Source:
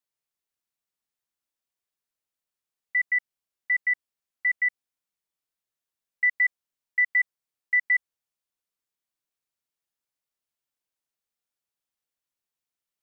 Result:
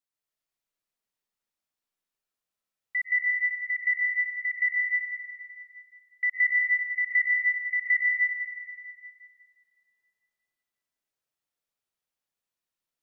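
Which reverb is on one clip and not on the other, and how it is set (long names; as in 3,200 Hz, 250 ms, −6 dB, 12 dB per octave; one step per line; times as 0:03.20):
comb and all-pass reverb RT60 2.6 s, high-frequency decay 0.6×, pre-delay 95 ms, DRR −4.5 dB
level −4.5 dB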